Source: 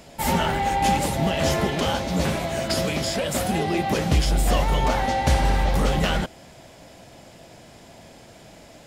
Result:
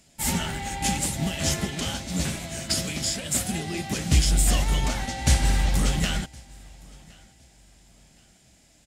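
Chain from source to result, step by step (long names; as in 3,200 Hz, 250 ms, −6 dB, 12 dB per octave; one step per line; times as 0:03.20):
octave-band graphic EQ 500/1,000/8,000 Hz −9/−7/+9 dB
on a send: repeating echo 1,065 ms, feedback 39%, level −17.5 dB
on the sum: expander for the loud parts 1.5 to 1, over −41 dBFS
level +1.5 dB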